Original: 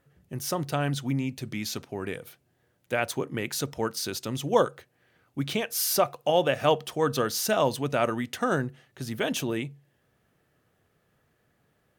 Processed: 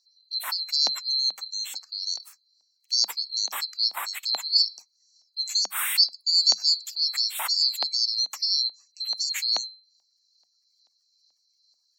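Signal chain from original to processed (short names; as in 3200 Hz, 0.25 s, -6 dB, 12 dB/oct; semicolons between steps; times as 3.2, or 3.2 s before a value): band-swap scrambler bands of 4000 Hz; spectral gate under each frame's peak -25 dB strong; tone controls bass +12 dB, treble +4 dB; LFO high-pass saw up 2.3 Hz 760–4400 Hz; rippled Chebyshev high-pass 190 Hz, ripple 3 dB; gain -1 dB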